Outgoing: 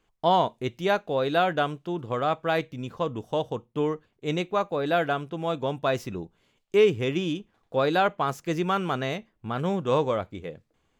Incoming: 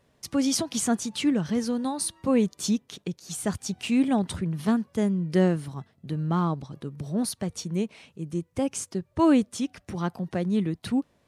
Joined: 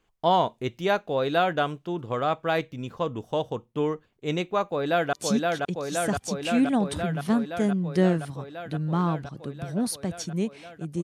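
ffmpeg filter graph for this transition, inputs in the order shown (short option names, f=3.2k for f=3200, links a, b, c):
-filter_complex "[0:a]apad=whole_dur=11.03,atrim=end=11.03,atrim=end=5.132[a];[1:a]atrim=start=2.508:end=8.41[b];[a][b]acrossfade=d=0.004:c1=hsin:c2=hsin,asplit=2[c][d];[d]afade=t=in:st=4.69:d=0.01,afade=t=out:st=5.13:d=0.01,aecho=0:1:520|1040|1560|2080|2600|3120|3640|4160|4680|5200|5720|6240:0.749894|0.599915|0.479932|0.383946|0.307157|0.245725|0.19658|0.157264|0.125811|0.100649|0.0805193|0.0644154[e];[c][e]amix=inputs=2:normalize=0"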